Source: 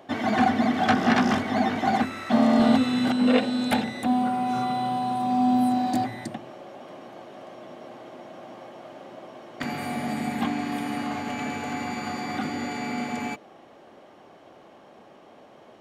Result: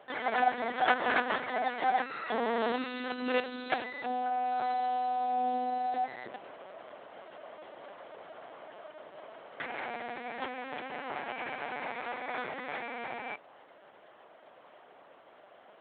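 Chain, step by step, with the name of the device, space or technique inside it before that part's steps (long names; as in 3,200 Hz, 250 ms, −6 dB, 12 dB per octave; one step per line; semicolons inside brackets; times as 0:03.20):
talking toy (linear-prediction vocoder at 8 kHz pitch kept; high-pass filter 420 Hz 12 dB per octave; parametric band 1,600 Hz +4.5 dB 0.59 octaves)
level −3.5 dB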